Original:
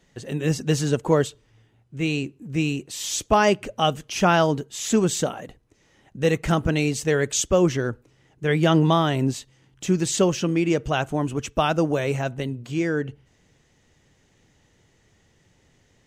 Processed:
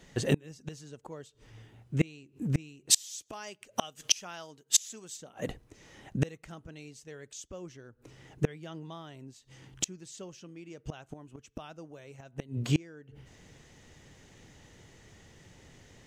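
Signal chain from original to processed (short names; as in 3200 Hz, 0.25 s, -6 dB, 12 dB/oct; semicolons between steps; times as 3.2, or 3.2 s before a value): dynamic EQ 5600 Hz, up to +5 dB, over -42 dBFS, Q 0.9; flipped gate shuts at -19 dBFS, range -31 dB; 2.9–5.17 tilt +2.5 dB/oct; gain +5.5 dB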